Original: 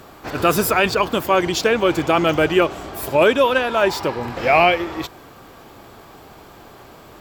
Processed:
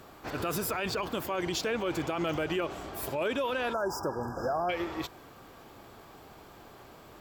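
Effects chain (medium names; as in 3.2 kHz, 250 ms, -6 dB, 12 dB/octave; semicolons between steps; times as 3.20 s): spectral selection erased 3.73–4.70 s, 1.7–4.8 kHz; peak limiter -14 dBFS, peak gain reduction 9.5 dB; trim -8.5 dB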